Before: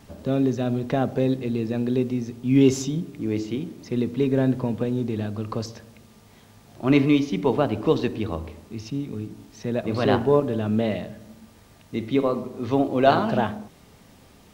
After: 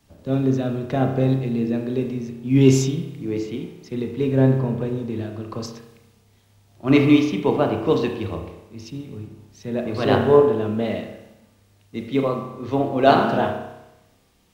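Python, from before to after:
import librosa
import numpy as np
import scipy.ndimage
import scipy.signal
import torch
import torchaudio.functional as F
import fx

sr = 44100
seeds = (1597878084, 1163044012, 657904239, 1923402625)

y = fx.rev_spring(x, sr, rt60_s=1.2, pass_ms=(30,), chirp_ms=75, drr_db=3.5)
y = fx.band_widen(y, sr, depth_pct=40)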